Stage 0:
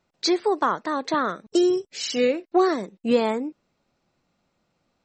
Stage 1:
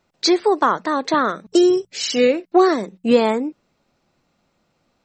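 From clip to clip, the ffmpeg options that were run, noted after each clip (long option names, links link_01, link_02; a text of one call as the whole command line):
ffmpeg -i in.wav -af "bandreject=frequency=60:width_type=h:width=6,bandreject=frequency=120:width_type=h:width=6,bandreject=frequency=180:width_type=h:width=6,volume=5.5dB" out.wav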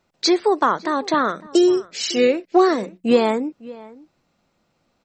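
ffmpeg -i in.wav -filter_complex "[0:a]asplit=2[link_01][link_02];[link_02]adelay=553.9,volume=-20dB,highshelf=frequency=4000:gain=-12.5[link_03];[link_01][link_03]amix=inputs=2:normalize=0,volume=-1dB" out.wav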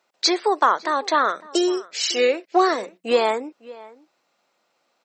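ffmpeg -i in.wav -af "highpass=520,volume=1.5dB" out.wav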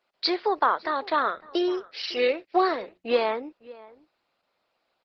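ffmpeg -i in.wav -af "aresample=11025,aresample=44100,volume=-4.5dB" -ar 48000 -c:a libopus -b:a 12k out.opus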